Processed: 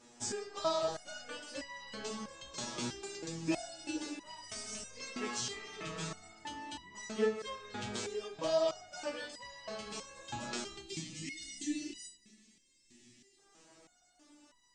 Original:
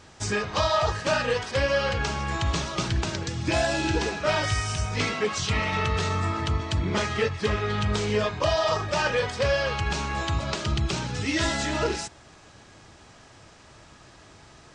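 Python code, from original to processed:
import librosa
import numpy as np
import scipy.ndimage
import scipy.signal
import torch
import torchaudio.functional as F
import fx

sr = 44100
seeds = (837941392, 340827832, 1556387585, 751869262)

y = fx.graphic_eq(x, sr, hz=(250, 500, 8000), db=(10, 3, 10))
y = fx.spec_box(y, sr, start_s=10.83, length_s=2.55, low_hz=400.0, high_hz=1700.0, gain_db=-22)
y = fx.peak_eq(y, sr, hz=74.0, db=-13.5, octaves=1.8)
y = fx.rev_freeverb(y, sr, rt60_s=1.6, hf_ratio=0.75, predelay_ms=20, drr_db=13.0)
y = fx.resonator_held(y, sr, hz=3.1, low_hz=120.0, high_hz=970.0)
y = y * 10.0 ** (-1.5 / 20.0)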